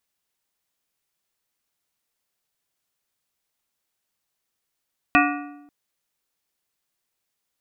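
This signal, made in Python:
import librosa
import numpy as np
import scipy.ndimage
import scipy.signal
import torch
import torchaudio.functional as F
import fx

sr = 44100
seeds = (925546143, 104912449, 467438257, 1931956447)

y = fx.strike_metal(sr, length_s=0.54, level_db=-17, body='plate', hz=290.0, decay_s=0.99, tilt_db=0.5, modes=7)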